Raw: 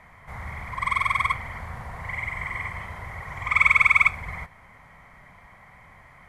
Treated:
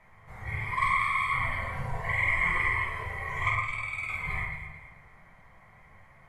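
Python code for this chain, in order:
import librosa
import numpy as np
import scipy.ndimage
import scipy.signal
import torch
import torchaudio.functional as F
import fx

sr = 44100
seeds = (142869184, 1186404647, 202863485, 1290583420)

y = fx.over_compress(x, sr, threshold_db=-26.0, ratio=-0.5)
y = fx.dynamic_eq(y, sr, hz=5700.0, q=3.4, threshold_db=-55.0, ratio=4.0, max_db=-4)
y = fx.noise_reduce_blind(y, sr, reduce_db=12)
y = fx.echo_alternate(y, sr, ms=110, hz=2000.0, feedback_pct=59, wet_db=-4)
y = fx.room_shoebox(y, sr, seeds[0], volume_m3=36.0, walls='mixed', distance_m=0.64)
y = y * 10.0 ** (-3.0 / 20.0)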